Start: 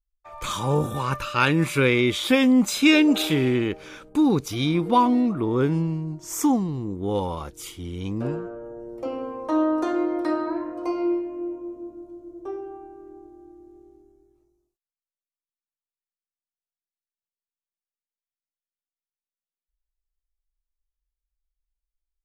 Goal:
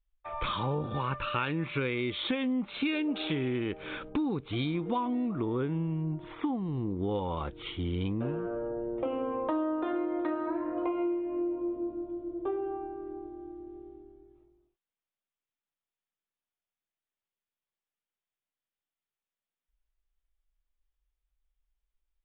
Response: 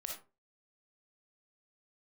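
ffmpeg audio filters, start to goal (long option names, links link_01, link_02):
-af "acompressor=threshold=-32dB:ratio=8,aresample=8000,aresample=44100,volume=3.5dB"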